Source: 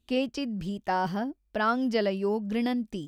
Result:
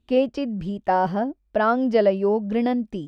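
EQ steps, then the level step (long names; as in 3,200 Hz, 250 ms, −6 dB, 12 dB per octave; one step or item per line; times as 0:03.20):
dynamic equaliser 590 Hz, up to +7 dB, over −42 dBFS, Q 1.6
low-pass filter 1,900 Hz 6 dB per octave
+4.5 dB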